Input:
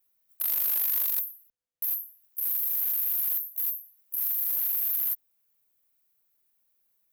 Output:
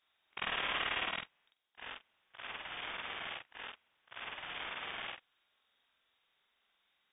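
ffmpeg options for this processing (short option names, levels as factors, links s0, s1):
-af "afftfilt=real='re':imag='-im':win_size=4096:overlap=0.75,lowpass=f=3200:t=q:w=0.5098,lowpass=f=3200:t=q:w=0.6013,lowpass=f=3200:t=q:w=0.9,lowpass=f=3200:t=q:w=2.563,afreqshift=-3800,volume=7.5"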